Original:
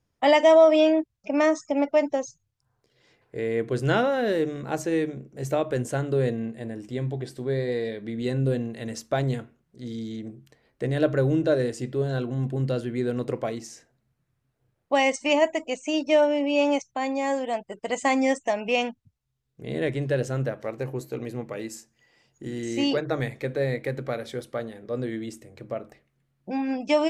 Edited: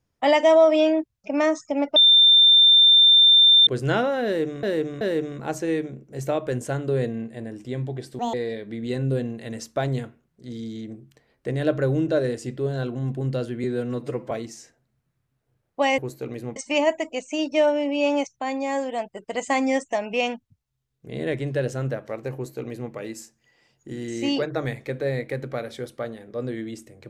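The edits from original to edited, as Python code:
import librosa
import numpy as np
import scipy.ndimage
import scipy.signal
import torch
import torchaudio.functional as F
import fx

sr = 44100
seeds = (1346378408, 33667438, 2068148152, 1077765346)

y = fx.edit(x, sr, fx.bleep(start_s=1.96, length_s=1.71, hz=3580.0, db=-10.5),
    fx.repeat(start_s=4.25, length_s=0.38, count=3),
    fx.speed_span(start_s=7.43, length_s=0.26, speed=1.78),
    fx.stretch_span(start_s=12.99, length_s=0.45, factor=1.5),
    fx.duplicate(start_s=20.89, length_s=0.58, to_s=15.11), tone=tone)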